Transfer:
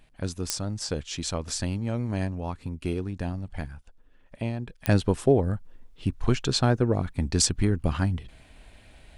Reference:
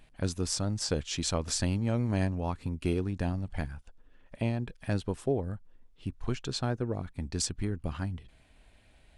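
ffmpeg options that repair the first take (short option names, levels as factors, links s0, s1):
-af "adeclick=t=4,asetnsamples=n=441:p=0,asendcmd='4.87 volume volume -9dB',volume=1"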